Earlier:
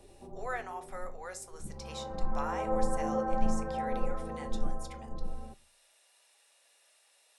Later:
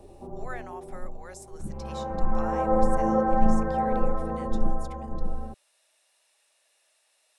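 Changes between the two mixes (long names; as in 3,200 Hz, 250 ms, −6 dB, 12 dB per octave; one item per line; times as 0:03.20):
background +8.5 dB
reverb: off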